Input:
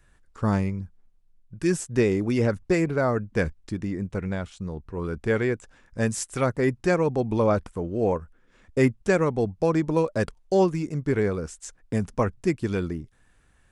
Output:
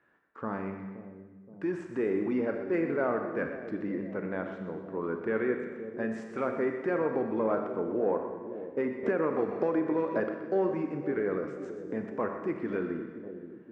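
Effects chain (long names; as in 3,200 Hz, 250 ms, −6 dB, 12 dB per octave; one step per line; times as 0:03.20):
in parallel at −6 dB: gain into a clipping stage and back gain 19.5 dB
on the sum: brickwall limiter −16.5 dBFS, peak gain reduction 9 dB
Chebyshev band-pass filter 280–1,700 Hz, order 2
on a send: echo with a time of its own for lows and highs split 620 Hz, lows 523 ms, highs 124 ms, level −11 dB
on the sum: four-comb reverb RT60 1.2 s, combs from 28 ms, DRR 5.5 dB
0:09.03–0:10.20: multiband upward and downward compressor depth 100%
level −4.5 dB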